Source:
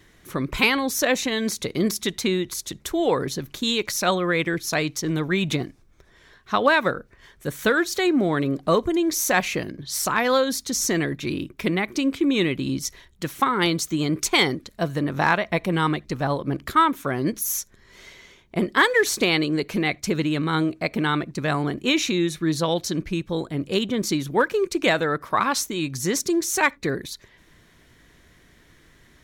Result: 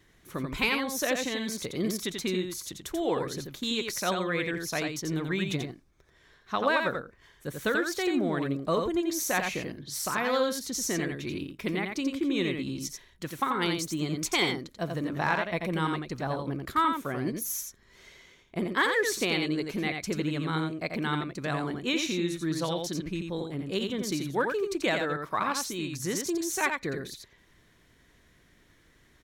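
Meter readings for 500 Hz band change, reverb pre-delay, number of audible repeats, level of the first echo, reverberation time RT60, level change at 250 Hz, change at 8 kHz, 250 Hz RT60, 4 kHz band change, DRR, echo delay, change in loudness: -7.0 dB, none, 1, -5.0 dB, none, -7.0 dB, -7.0 dB, none, -7.0 dB, none, 87 ms, -7.0 dB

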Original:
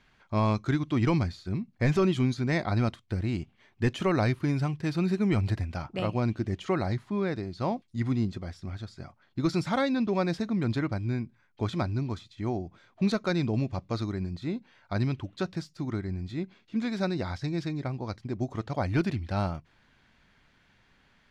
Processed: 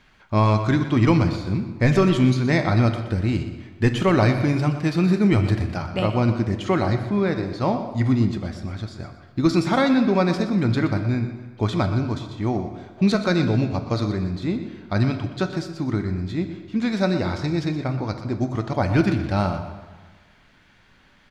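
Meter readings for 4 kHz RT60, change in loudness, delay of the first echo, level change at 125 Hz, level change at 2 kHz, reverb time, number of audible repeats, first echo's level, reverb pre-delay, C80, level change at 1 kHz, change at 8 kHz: 1.0 s, +8.0 dB, 0.122 s, +8.0 dB, +8.0 dB, 1.4 s, 2, -12.5 dB, 3 ms, 8.5 dB, +8.0 dB, n/a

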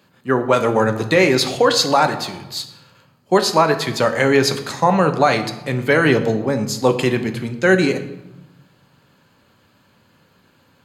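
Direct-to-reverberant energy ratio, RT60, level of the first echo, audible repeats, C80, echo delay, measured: 6.5 dB, 1.0 s, none, none, 13.5 dB, none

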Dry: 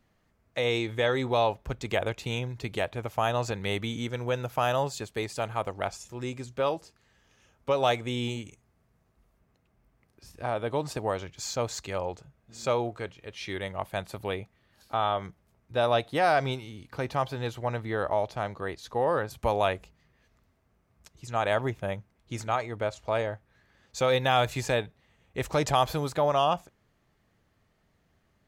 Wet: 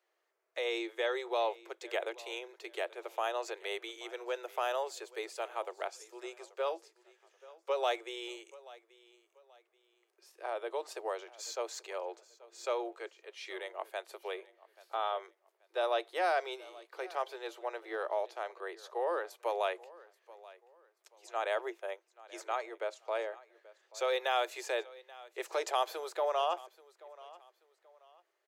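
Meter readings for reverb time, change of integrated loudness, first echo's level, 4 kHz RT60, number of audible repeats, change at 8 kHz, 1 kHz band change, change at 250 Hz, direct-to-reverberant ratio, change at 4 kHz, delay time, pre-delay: none, -7.5 dB, -20.5 dB, none, 2, -7.5 dB, -7.0 dB, -14.0 dB, none, -7.0 dB, 0.832 s, none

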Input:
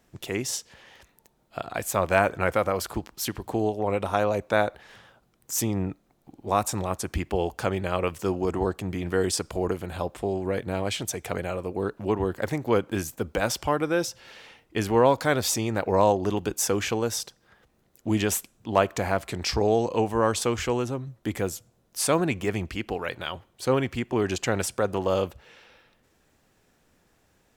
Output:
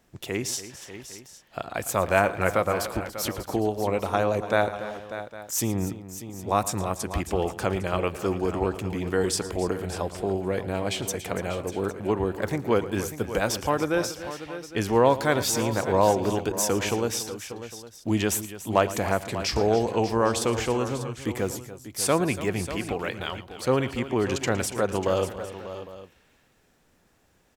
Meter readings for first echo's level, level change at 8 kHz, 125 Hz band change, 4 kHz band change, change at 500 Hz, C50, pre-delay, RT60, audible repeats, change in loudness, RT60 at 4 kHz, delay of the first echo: -16.5 dB, +0.5 dB, +0.5 dB, +0.5 dB, +0.5 dB, none, none, none, 4, 0.0 dB, none, 0.113 s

